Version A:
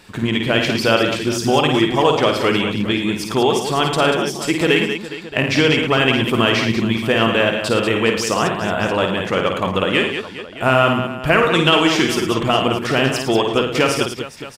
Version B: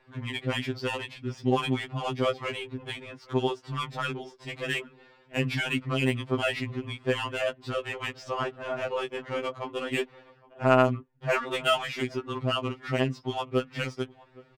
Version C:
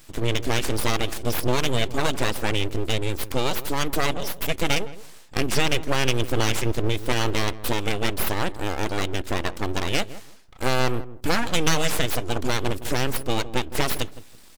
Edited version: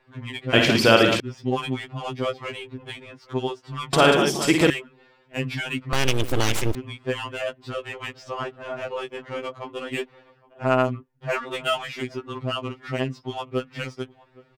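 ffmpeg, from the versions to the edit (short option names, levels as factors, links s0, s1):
-filter_complex "[0:a]asplit=2[s0][s1];[1:a]asplit=4[s2][s3][s4][s5];[s2]atrim=end=0.532[s6];[s0]atrim=start=0.528:end=1.202[s7];[s3]atrim=start=1.198:end=3.932[s8];[s1]atrim=start=3.928:end=4.702[s9];[s4]atrim=start=4.698:end=5.932[s10];[2:a]atrim=start=5.928:end=6.752[s11];[s5]atrim=start=6.748[s12];[s6][s7]acrossfade=d=0.004:c1=hsin:c2=hsin[s13];[s13][s8]acrossfade=d=0.004:c1=hsin:c2=hsin[s14];[s14][s9]acrossfade=d=0.004:c1=hsin:c2=hsin[s15];[s15][s10]acrossfade=d=0.004:c1=hsin:c2=hsin[s16];[s16][s11]acrossfade=d=0.004:c1=hsin:c2=hsin[s17];[s17][s12]acrossfade=d=0.004:c1=hsin:c2=hsin"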